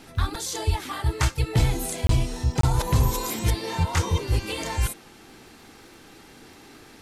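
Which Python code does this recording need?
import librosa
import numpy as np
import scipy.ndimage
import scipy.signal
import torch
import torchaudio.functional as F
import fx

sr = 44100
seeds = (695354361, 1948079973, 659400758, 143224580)

y = fx.fix_declick_ar(x, sr, threshold=6.5)
y = fx.fix_interpolate(y, sr, at_s=(2.07, 2.61), length_ms=23.0)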